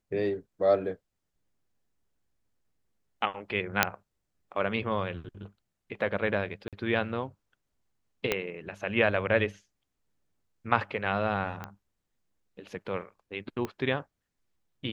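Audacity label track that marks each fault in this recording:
3.830000	3.830000	pop -3 dBFS
6.680000	6.730000	dropout 47 ms
8.320000	8.320000	pop -11 dBFS
11.640000	11.640000	pop -23 dBFS
13.650000	13.650000	pop -20 dBFS

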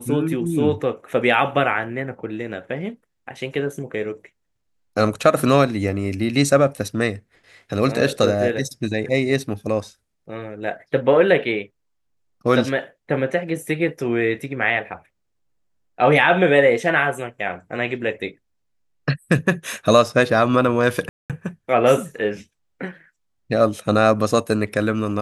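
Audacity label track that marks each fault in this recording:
21.090000	21.300000	dropout 207 ms

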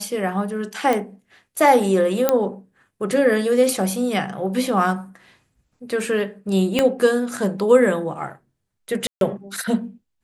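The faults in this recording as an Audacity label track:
0.930000	0.930000	pop
2.290000	2.290000	pop -3 dBFS
6.790000	6.790000	pop -5 dBFS
9.070000	9.210000	dropout 142 ms

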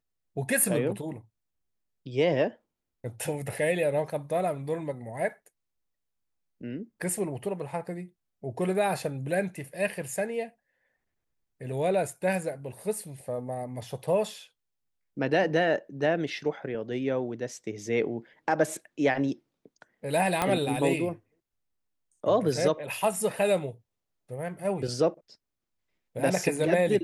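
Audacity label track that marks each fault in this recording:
20.420000	20.420000	pop -11 dBFS

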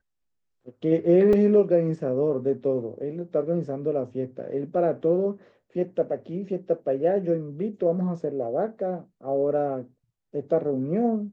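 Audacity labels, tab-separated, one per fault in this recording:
1.330000	1.330000	dropout 3.5 ms

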